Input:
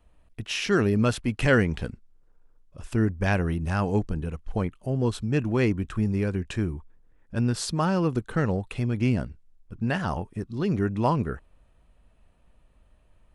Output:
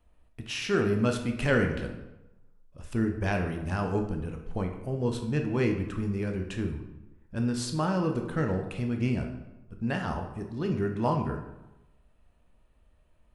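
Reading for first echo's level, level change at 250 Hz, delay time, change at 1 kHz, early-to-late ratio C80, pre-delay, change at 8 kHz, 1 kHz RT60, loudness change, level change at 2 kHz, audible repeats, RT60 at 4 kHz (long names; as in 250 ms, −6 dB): no echo audible, −3.0 dB, no echo audible, −3.0 dB, 9.5 dB, 11 ms, −4.0 dB, 1.0 s, −3.5 dB, −4.0 dB, no echo audible, 0.70 s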